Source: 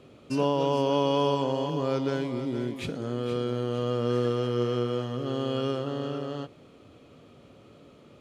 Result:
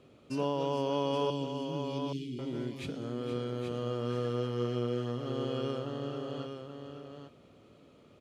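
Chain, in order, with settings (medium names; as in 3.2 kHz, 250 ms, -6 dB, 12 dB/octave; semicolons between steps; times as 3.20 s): 1.30–2.39 s: elliptic band-stop 340–2600 Hz, stop band 40 dB; delay 824 ms -7 dB; trim -6.5 dB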